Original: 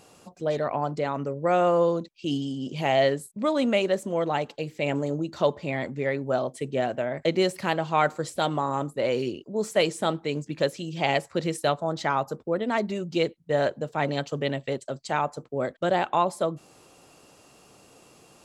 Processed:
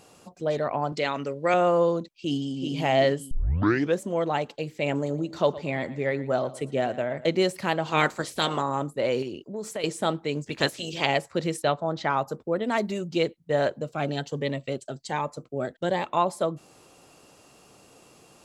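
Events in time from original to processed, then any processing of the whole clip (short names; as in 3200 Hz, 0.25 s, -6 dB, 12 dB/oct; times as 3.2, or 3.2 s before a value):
0.92–1.54 weighting filter D
2.16–2.74 echo throw 0.38 s, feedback 35%, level -4.5 dB
3.31 tape start 0.69 s
4.94–7.32 feedback echo 0.116 s, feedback 36%, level -17 dB
7.85–8.61 spectral limiter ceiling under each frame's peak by 16 dB
9.22–9.84 compressor 5:1, threshold -29 dBFS
10.44–11.05 spectral limiter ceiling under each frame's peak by 17 dB
11.62–12.13 LPF 4700 Hz
12.64–13.08 high shelf 7600 Hz +9.5 dB
13.82–16.17 cascading phaser rising 1.3 Hz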